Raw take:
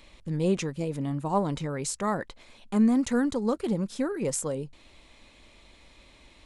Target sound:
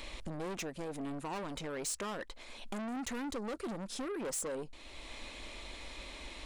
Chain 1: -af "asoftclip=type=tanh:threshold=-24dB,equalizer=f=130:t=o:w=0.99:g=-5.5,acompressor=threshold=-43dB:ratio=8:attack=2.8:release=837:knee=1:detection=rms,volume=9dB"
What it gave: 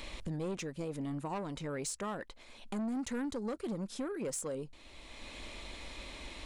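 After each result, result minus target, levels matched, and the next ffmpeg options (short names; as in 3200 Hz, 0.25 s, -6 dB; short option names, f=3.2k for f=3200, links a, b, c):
soft clip: distortion -6 dB; 125 Hz band +4.0 dB
-af "asoftclip=type=tanh:threshold=-33.5dB,equalizer=f=130:t=o:w=0.99:g=-5.5,acompressor=threshold=-43dB:ratio=8:attack=2.8:release=837:knee=1:detection=rms,volume=9dB"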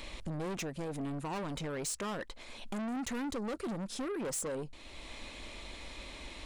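125 Hz band +4.0 dB
-af "asoftclip=type=tanh:threshold=-33.5dB,equalizer=f=130:t=o:w=0.99:g=-13.5,acompressor=threshold=-43dB:ratio=8:attack=2.8:release=837:knee=1:detection=rms,volume=9dB"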